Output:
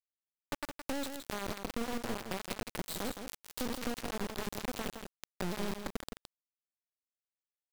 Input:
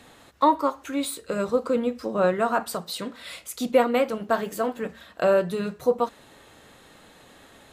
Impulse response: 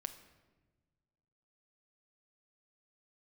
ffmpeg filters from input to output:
-filter_complex "[0:a]asplit=2[link_01][link_02];[link_02]alimiter=limit=-17.5dB:level=0:latency=1:release=147,volume=0dB[link_03];[link_01][link_03]amix=inputs=2:normalize=0,agate=range=-33dB:threshold=-34dB:ratio=3:detection=peak,aeval=exprs='(tanh(50.1*val(0)+0.8)-tanh(0.8))/50.1':channel_layout=same,equalizer=frequency=125:width_type=o:width=1:gain=6,equalizer=frequency=250:width_type=o:width=1:gain=7,equalizer=frequency=500:width_type=o:width=1:gain=-5,equalizer=frequency=1000:width_type=o:width=1:gain=-11,equalizer=frequency=2000:width_type=o:width=1:gain=-4,equalizer=frequency=4000:width_type=o:width=1:gain=6,equalizer=frequency=8000:width_type=o:width=1:gain=-8,acrusher=bits=3:dc=4:mix=0:aa=0.000001,acompressor=threshold=-40dB:ratio=4,asplit=2[link_04][link_05];[link_05]aecho=0:1:166:0.422[link_06];[link_04][link_06]amix=inputs=2:normalize=0,volume=7.5dB"

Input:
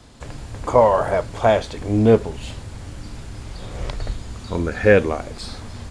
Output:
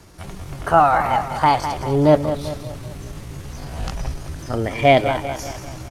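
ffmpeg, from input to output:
ffmpeg -i in.wav -af "aecho=1:1:196|392|588|784|980:0.316|0.155|0.0759|0.0372|0.0182,asetrate=58866,aresample=44100,atempo=0.749154" out.wav

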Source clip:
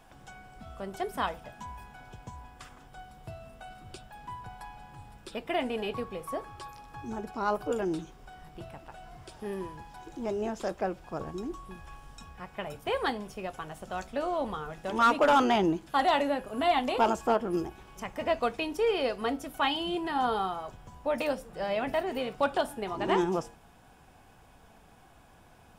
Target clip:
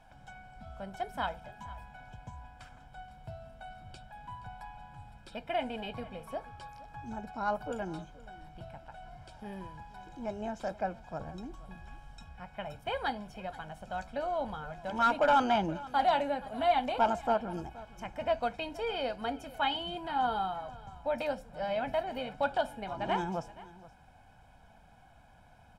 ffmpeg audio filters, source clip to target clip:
ffmpeg -i in.wav -af "highshelf=frequency=6900:gain=-11,aecho=1:1:1.3:0.66,aecho=1:1:474:0.112,volume=-4.5dB" out.wav

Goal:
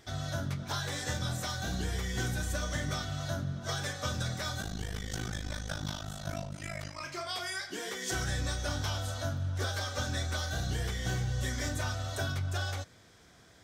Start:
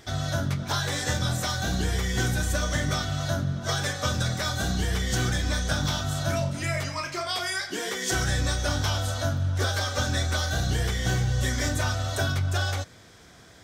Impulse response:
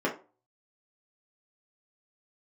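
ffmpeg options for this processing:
-filter_complex "[0:a]asplit=3[link_01][link_02][link_03];[link_01]afade=type=out:start_time=4.6:duration=0.02[link_04];[link_02]tremolo=f=52:d=0.919,afade=type=in:start_time=4.6:duration=0.02,afade=type=out:start_time=7:duration=0.02[link_05];[link_03]afade=type=in:start_time=7:duration=0.02[link_06];[link_04][link_05][link_06]amix=inputs=3:normalize=0,volume=-7.5dB"

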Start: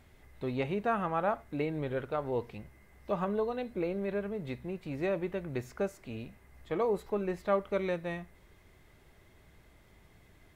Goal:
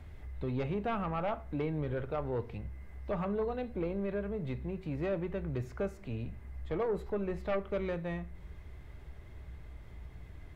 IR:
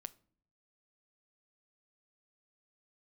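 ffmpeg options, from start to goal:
-filter_complex "[0:a]equalizer=frequency=63:width_type=o:width=0.62:gain=10,acrossover=split=130|2200[link_01][link_02][link_03];[link_01]acontrast=63[link_04];[link_04][link_02][link_03]amix=inputs=3:normalize=0,aeval=exprs='0.168*sin(PI/2*2*val(0)/0.168)':channel_layout=same,asplit=2[link_05][link_06];[link_06]acompressor=threshold=-36dB:ratio=6,volume=2dB[link_07];[link_05][link_07]amix=inputs=2:normalize=0,highshelf=frequency=4400:gain=-10[link_08];[1:a]atrim=start_sample=2205[link_09];[link_08][link_09]afir=irnorm=-1:irlink=0,volume=-8dB"

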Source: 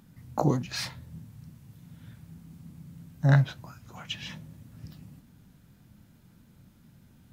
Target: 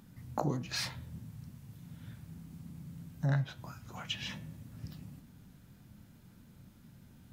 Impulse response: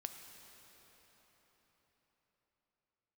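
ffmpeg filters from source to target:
-af "acompressor=threshold=-32dB:ratio=2.5,bandreject=frequency=160.9:width_type=h:width=4,bandreject=frequency=321.8:width_type=h:width=4,bandreject=frequency=482.7:width_type=h:width=4,bandreject=frequency=643.6:width_type=h:width=4,bandreject=frequency=804.5:width_type=h:width=4,bandreject=frequency=965.4:width_type=h:width=4,bandreject=frequency=1126.3:width_type=h:width=4,bandreject=frequency=1287.2:width_type=h:width=4,bandreject=frequency=1448.1:width_type=h:width=4,bandreject=frequency=1609:width_type=h:width=4,bandreject=frequency=1769.9:width_type=h:width=4,bandreject=frequency=1930.8:width_type=h:width=4,bandreject=frequency=2091.7:width_type=h:width=4,bandreject=frequency=2252.6:width_type=h:width=4,bandreject=frequency=2413.5:width_type=h:width=4,bandreject=frequency=2574.4:width_type=h:width=4,bandreject=frequency=2735.3:width_type=h:width=4,bandreject=frequency=2896.2:width_type=h:width=4,bandreject=frequency=3057.1:width_type=h:width=4,bandreject=frequency=3218:width_type=h:width=4,bandreject=frequency=3378.9:width_type=h:width=4,bandreject=frequency=3539.8:width_type=h:width=4,bandreject=frequency=3700.7:width_type=h:width=4,bandreject=frequency=3861.6:width_type=h:width=4"

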